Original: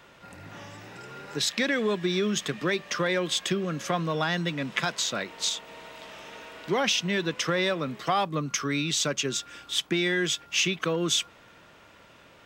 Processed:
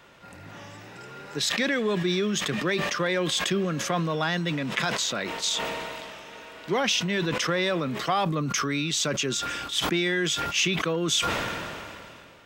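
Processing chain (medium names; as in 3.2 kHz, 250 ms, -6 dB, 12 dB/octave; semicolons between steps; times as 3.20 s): decay stretcher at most 24 dB/s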